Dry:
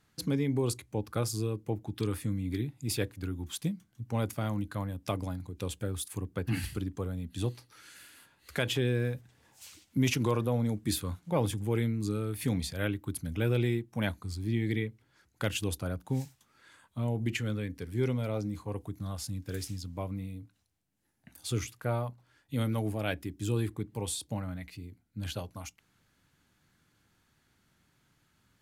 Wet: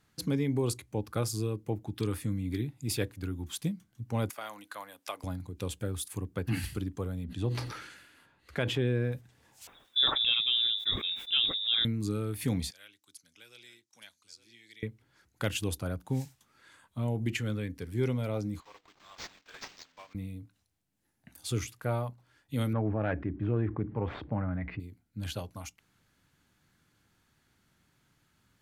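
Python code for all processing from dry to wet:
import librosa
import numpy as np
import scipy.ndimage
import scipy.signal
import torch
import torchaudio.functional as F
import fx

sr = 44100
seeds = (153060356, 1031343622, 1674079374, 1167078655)

y = fx.chain(x, sr, fx.highpass(hz=770.0, slope=12),
    fx.band_squash(depth_pct=40), at=(4.3, 5.24))
y = fx.chain(y, sr, fx.lowpass(hz=2100.0, slope=6),
    fx.sustainer(db_per_s=51.0), at=(7.24, 9.12))
y = fx.chain(y, sr, fx.freq_invert(carrier_hz=3700),
    fx.quant_dither(seeds[0], bits=12, dither='none'),
    fx.sustainer(db_per_s=99.0), at=(9.67, 11.85))
y = fx.chain(y, sr, fx.bandpass_q(hz=5800.0, q=2.4),
    fx.echo_single(ms=868, db=-15.5),
    fx.band_squash(depth_pct=40), at=(12.71, 14.83))
y = fx.chain(y, sr, fx.block_float(bits=5),
    fx.highpass(hz=1400.0, slope=12),
    fx.resample_linear(factor=4), at=(18.6, 20.15))
y = fx.chain(y, sr, fx.self_delay(depth_ms=0.14),
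    fx.lowpass(hz=1900.0, slope=24),
    fx.env_flatten(amount_pct=50), at=(22.73, 24.8))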